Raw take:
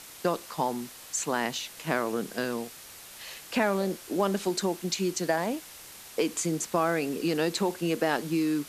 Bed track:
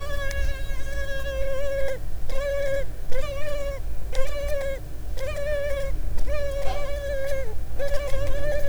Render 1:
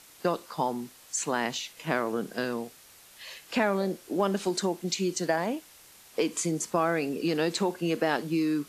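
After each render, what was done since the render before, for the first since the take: noise print and reduce 7 dB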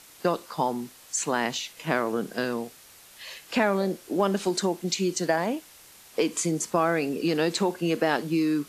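trim +2.5 dB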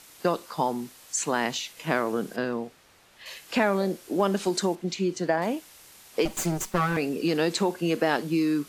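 2.36–3.26 s: low-pass 2.1 kHz 6 dB/octave; 4.75–5.42 s: low-pass 2.4 kHz 6 dB/octave; 6.25–6.97 s: comb filter that takes the minimum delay 5.3 ms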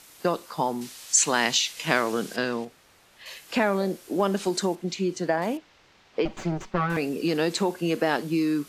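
0.81–2.65 s: peaking EQ 4.9 kHz +10 dB 2.9 oct; 5.57–6.90 s: distance through air 200 m

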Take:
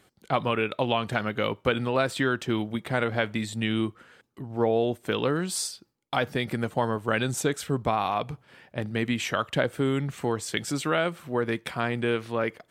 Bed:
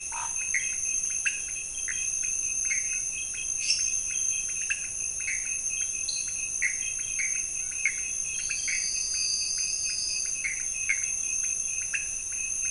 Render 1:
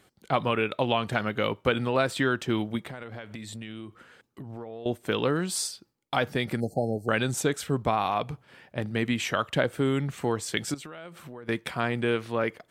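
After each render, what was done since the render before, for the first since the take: 2.84–4.86 s: compression 12:1, threshold -35 dBFS; 6.60–7.09 s: brick-wall FIR band-stop 830–4100 Hz; 10.74–11.49 s: compression 12:1, threshold -38 dBFS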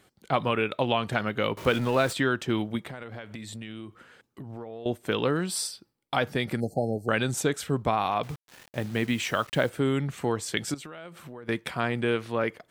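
1.57–2.13 s: jump at every zero crossing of -34.5 dBFS; 5.43–6.21 s: band-stop 6.7 kHz, Q 6.3; 8.23–9.70 s: word length cut 8-bit, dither none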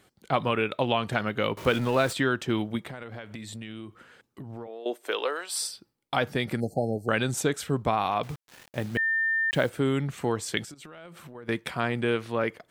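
4.66–5.59 s: high-pass 250 Hz -> 640 Hz 24 dB/octave; 8.97–9.51 s: bleep 1.8 kHz -22.5 dBFS; 10.64–11.35 s: compression 16:1, threshold -40 dBFS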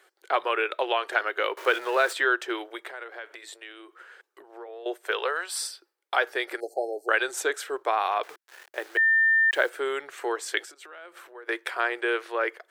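elliptic high-pass 360 Hz, stop band 40 dB; peaking EQ 1.6 kHz +7.5 dB 0.67 oct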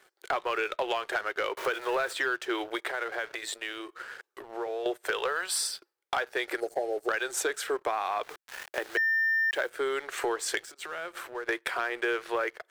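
compression 5:1, threshold -34 dBFS, peak gain reduction 15.5 dB; waveshaping leveller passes 2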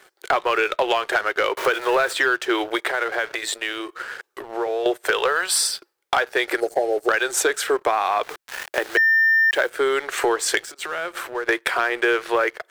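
trim +9.5 dB

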